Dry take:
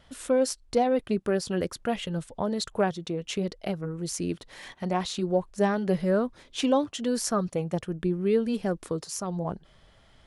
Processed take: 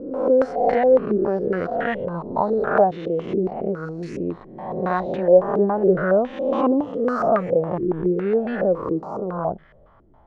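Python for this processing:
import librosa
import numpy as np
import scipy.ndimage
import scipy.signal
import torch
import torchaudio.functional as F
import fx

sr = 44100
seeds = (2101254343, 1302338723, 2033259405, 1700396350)

y = fx.spec_swells(x, sr, rise_s=1.12)
y = fx.filter_held_lowpass(y, sr, hz=7.2, low_hz=350.0, high_hz=1800.0)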